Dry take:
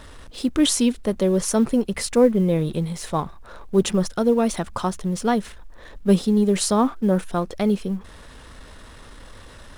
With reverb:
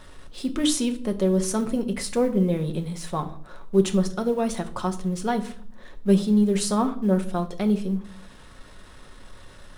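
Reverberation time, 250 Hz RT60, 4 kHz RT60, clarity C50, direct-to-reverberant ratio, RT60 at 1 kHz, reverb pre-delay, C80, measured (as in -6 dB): 0.55 s, 0.85 s, 0.40 s, 15.0 dB, 5.5 dB, 0.50 s, 5 ms, 18.0 dB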